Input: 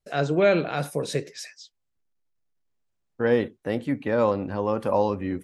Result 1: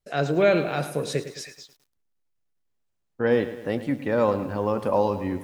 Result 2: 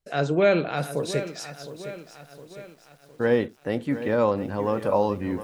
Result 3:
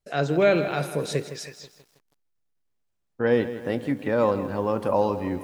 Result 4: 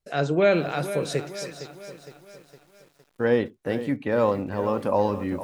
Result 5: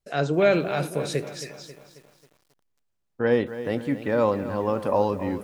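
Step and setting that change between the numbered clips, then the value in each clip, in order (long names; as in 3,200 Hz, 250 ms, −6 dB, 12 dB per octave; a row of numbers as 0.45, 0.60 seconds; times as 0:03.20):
feedback echo at a low word length, delay time: 107, 711, 161, 461, 270 milliseconds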